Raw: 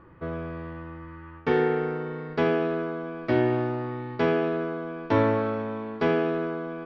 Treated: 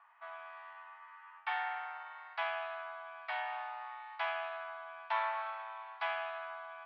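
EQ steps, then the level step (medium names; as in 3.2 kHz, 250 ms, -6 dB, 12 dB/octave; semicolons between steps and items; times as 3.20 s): rippled Chebyshev high-pass 680 Hz, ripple 3 dB; low-pass 4 kHz 24 dB/octave; -3.5 dB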